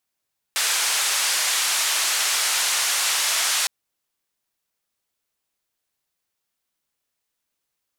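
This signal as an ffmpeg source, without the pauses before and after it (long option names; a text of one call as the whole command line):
ffmpeg -f lavfi -i "anoisesrc=color=white:duration=3.11:sample_rate=44100:seed=1,highpass=frequency=940,lowpass=frequency=9000,volume=-12.9dB" out.wav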